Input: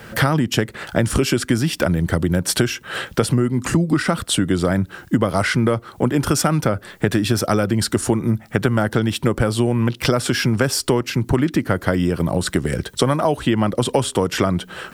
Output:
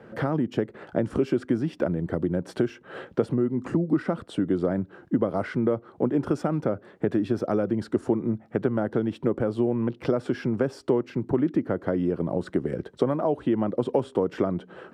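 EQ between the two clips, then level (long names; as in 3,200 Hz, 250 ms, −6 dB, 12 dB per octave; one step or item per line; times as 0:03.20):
resonant band-pass 380 Hz, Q 0.91
−3.5 dB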